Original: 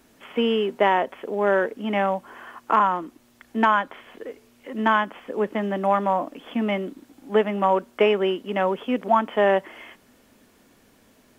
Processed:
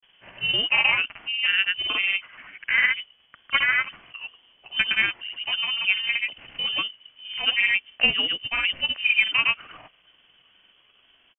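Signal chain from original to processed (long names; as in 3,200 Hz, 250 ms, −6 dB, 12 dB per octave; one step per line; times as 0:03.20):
pitch shifter gated in a rhythm +3.5 semitones, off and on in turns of 240 ms
granular cloud, grains 20 per second, pitch spread up and down by 0 semitones
voice inversion scrambler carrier 3,300 Hz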